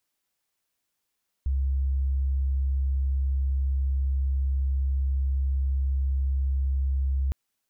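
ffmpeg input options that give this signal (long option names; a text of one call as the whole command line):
ffmpeg -f lavfi -i "sine=frequency=67.3:duration=5.86:sample_rate=44100,volume=-3.94dB" out.wav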